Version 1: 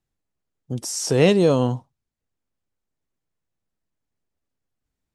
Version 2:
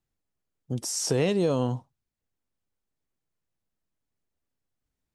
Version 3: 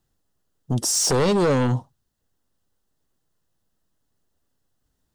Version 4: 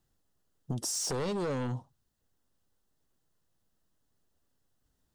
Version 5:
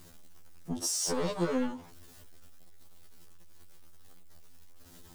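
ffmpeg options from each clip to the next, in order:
ffmpeg -i in.wav -af "acompressor=threshold=-18dB:ratio=6,volume=-2.5dB" out.wav
ffmpeg -i in.wav -filter_complex "[0:a]equalizer=frequency=2300:width=6.4:gain=-14,asplit=2[link_01][link_02];[link_02]aeval=exprs='0.224*sin(PI/2*3.55*val(0)/0.224)':channel_layout=same,volume=-6dB[link_03];[link_01][link_03]amix=inputs=2:normalize=0,volume=-1dB" out.wav
ffmpeg -i in.wav -af "acompressor=threshold=-29dB:ratio=6,volume=-3dB" out.wav
ffmpeg -i in.wav -af "aeval=exprs='val(0)+0.5*0.00376*sgn(val(0))':channel_layout=same,afftfilt=real='re*2*eq(mod(b,4),0)':imag='im*2*eq(mod(b,4),0)':win_size=2048:overlap=0.75,volume=3.5dB" out.wav

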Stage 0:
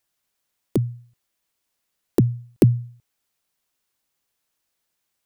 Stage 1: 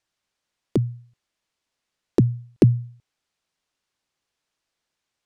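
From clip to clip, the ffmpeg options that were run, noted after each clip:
ffmpeg -i in.wav -af "lowpass=6300" out.wav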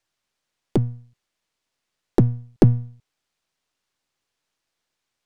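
ffmpeg -i in.wav -af "aeval=exprs='if(lt(val(0),0),0.447*val(0),val(0))':channel_layout=same,volume=3.5dB" out.wav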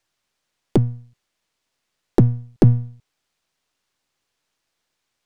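ffmpeg -i in.wav -af "alimiter=level_in=5dB:limit=-1dB:release=50:level=0:latency=1,volume=-1.5dB" out.wav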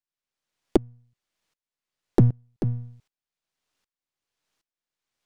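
ffmpeg -i in.wav -af "aeval=exprs='val(0)*pow(10,-24*if(lt(mod(-1.3*n/s,1),2*abs(-1.3)/1000),1-mod(-1.3*n/s,1)/(2*abs(-1.3)/1000),(mod(-1.3*n/s,1)-2*abs(-1.3)/1000)/(1-2*abs(-1.3)/1000))/20)':channel_layout=same" out.wav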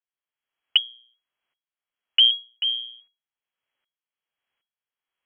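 ffmpeg -i in.wav -af "aemphasis=mode=reproduction:type=50fm,lowpass=frequency=2800:width_type=q:width=0.5098,lowpass=frequency=2800:width_type=q:width=0.6013,lowpass=frequency=2800:width_type=q:width=0.9,lowpass=frequency=2800:width_type=q:width=2.563,afreqshift=-3300" out.wav

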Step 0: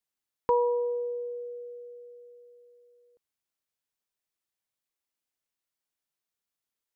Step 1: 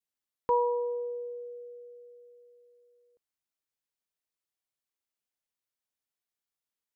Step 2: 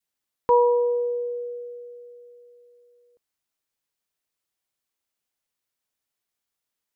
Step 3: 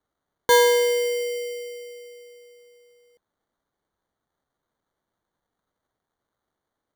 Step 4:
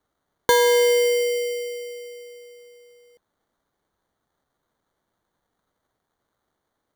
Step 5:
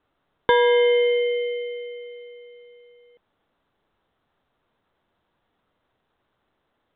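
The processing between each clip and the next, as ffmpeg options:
ffmpeg -i in.wav -af "adynamicequalizer=threshold=0.00891:dfrequency=1100:dqfactor=1:tfrequency=1100:tqfactor=1:attack=5:release=100:ratio=0.375:range=3:mode=boostabove:tftype=bell,volume=-4dB" out.wav
ffmpeg -i in.wav -af "adynamicequalizer=threshold=0.00891:dfrequency=490:dqfactor=2.4:tfrequency=490:tqfactor=2.4:attack=5:release=100:ratio=0.375:range=1.5:mode=boostabove:tftype=bell,volume=6.5dB" out.wav
ffmpeg -i in.wav -af "acrusher=samples=17:mix=1:aa=0.000001,volume=1.5dB" out.wav
ffmpeg -i in.wav -af "acompressor=threshold=-19dB:ratio=6,volume=5dB" out.wav
ffmpeg -i in.wav -ar 8000 -c:a pcm_mulaw out.wav

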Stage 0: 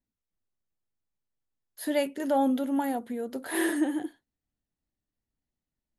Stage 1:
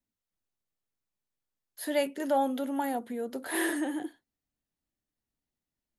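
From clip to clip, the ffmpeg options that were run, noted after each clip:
ffmpeg -i in.wav -filter_complex "[0:a]lowshelf=frequency=140:gain=-5.5,acrossover=split=400|890[link_01][link_02][link_03];[link_01]alimiter=level_in=8dB:limit=-24dB:level=0:latency=1,volume=-8dB[link_04];[link_04][link_02][link_03]amix=inputs=3:normalize=0" out.wav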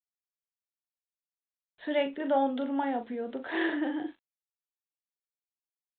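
ffmpeg -i in.wav -filter_complex "[0:a]aresample=8000,aeval=exprs='val(0)*gte(abs(val(0)),0.00141)':channel_layout=same,aresample=44100,asplit=2[link_01][link_02];[link_02]adelay=40,volume=-9.5dB[link_03];[link_01][link_03]amix=inputs=2:normalize=0" out.wav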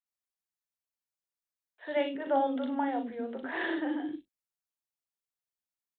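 ffmpeg -i in.wav -filter_complex "[0:a]acrossover=split=380|2800[link_01][link_02][link_03];[link_03]adelay=60[link_04];[link_01]adelay=90[link_05];[link_05][link_02][link_04]amix=inputs=3:normalize=0" out.wav

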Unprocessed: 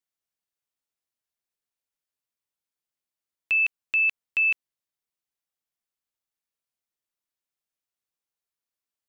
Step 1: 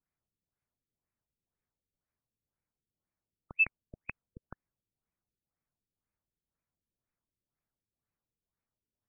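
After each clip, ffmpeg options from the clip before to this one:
ffmpeg -i in.wav -af "bass=frequency=250:gain=12,treble=frequency=4000:gain=-15,afftfilt=real='re*lt(b*sr/1024,490*pow(2700/490,0.5+0.5*sin(2*PI*2*pts/sr)))':imag='im*lt(b*sr/1024,490*pow(2700/490,0.5+0.5*sin(2*PI*2*pts/sr)))':win_size=1024:overlap=0.75,volume=2.5dB" out.wav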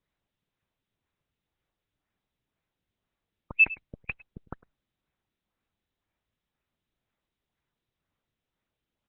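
ffmpeg -i in.wav -af "aecho=1:1:104:0.119,volume=6.5dB" -ar 48000 -c:a libopus -b:a 6k out.opus

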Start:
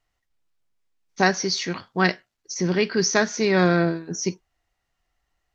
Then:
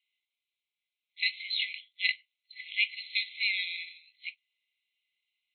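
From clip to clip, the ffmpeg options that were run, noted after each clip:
ffmpeg -i in.wav -af "afftfilt=real='re*between(b*sr/4096,2000,4200)':imag='im*between(b*sr/4096,2000,4200)':win_size=4096:overlap=0.75,volume=3dB" out.wav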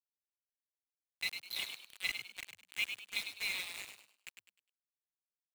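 ffmpeg -i in.wav -filter_complex "[0:a]asplit=2[link_01][link_02];[link_02]adelay=337,lowpass=frequency=3300:poles=1,volume=-6.5dB,asplit=2[link_03][link_04];[link_04]adelay=337,lowpass=frequency=3300:poles=1,volume=0.34,asplit=2[link_05][link_06];[link_06]adelay=337,lowpass=frequency=3300:poles=1,volume=0.34,asplit=2[link_07][link_08];[link_08]adelay=337,lowpass=frequency=3300:poles=1,volume=0.34[link_09];[link_03][link_05][link_07][link_09]amix=inputs=4:normalize=0[link_10];[link_01][link_10]amix=inputs=2:normalize=0,aeval=exprs='val(0)*gte(abs(val(0)),0.0335)':channel_layout=same,asplit=2[link_11][link_12];[link_12]asplit=4[link_13][link_14][link_15][link_16];[link_13]adelay=102,afreqshift=89,volume=-7.5dB[link_17];[link_14]adelay=204,afreqshift=178,volume=-17.4dB[link_18];[link_15]adelay=306,afreqshift=267,volume=-27.3dB[link_19];[link_16]adelay=408,afreqshift=356,volume=-37.2dB[link_20];[link_17][link_18][link_19][link_20]amix=inputs=4:normalize=0[link_21];[link_11][link_21]amix=inputs=2:normalize=0,volume=-8dB" out.wav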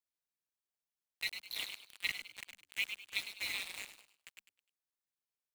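ffmpeg -i in.wav -af "aeval=exprs='val(0)*sin(2*PI*100*n/s)':channel_layout=same,volume=2dB" out.wav

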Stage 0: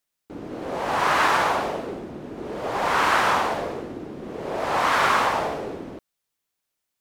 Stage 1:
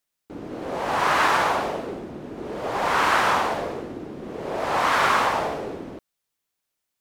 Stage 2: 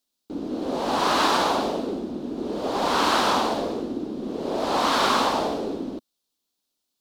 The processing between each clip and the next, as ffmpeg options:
ffmpeg -i in.wav -af anull out.wav
ffmpeg -i in.wav -af "equalizer=frequency=125:width_type=o:width=1:gain=-8,equalizer=frequency=250:width_type=o:width=1:gain=10,equalizer=frequency=2000:width_type=o:width=1:gain=-10,equalizer=frequency=4000:width_type=o:width=1:gain=9" out.wav

